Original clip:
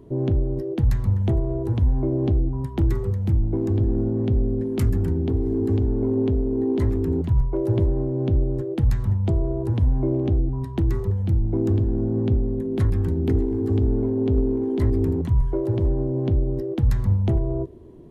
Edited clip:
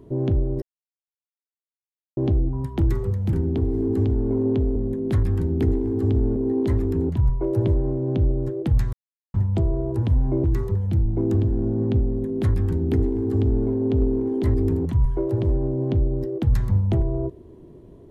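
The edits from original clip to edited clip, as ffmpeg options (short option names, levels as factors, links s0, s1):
-filter_complex "[0:a]asplit=8[s0][s1][s2][s3][s4][s5][s6][s7];[s0]atrim=end=0.62,asetpts=PTS-STARTPTS,afade=t=out:st=0.616:d=0.004:c=hsin[s8];[s1]atrim=start=0.62:end=2.17,asetpts=PTS-STARTPTS,volume=0[s9];[s2]atrim=start=2.17:end=3.332,asetpts=PTS-STARTPTS,afade=t=in:d=0.004:c=hsin[s10];[s3]atrim=start=5.048:end=6.482[s11];[s4]atrim=start=12.428:end=14.032[s12];[s5]atrim=start=6.478:end=9.05,asetpts=PTS-STARTPTS,afade=t=out:st=2.568:d=0.004:c=hsin,apad=pad_dur=0.41[s13];[s6]atrim=start=9.05:end=10.152,asetpts=PTS-STARTPTS,afade=t=in:d=0.004:c=hsin[s14];[s7]atrim=start=10.798[s15];[s8][s9][s10]concat=n=3:v=0:a=1[s16];[s16][s11]acrossfade=d=0.004:c1=hsin:c2=hsin[s17];[s17][s12]acrossfade=d=0.004:c1=hsin:c2=hsin[s18];[s13][s14]concat=n=2:v=0:a=1[s19];[s18][s19]acrossfade=d=0.004:c1=hsin:c2=hsin[s20];[s20][s15]acrossfade=d=0.004:c1=hsin:c2=hsin"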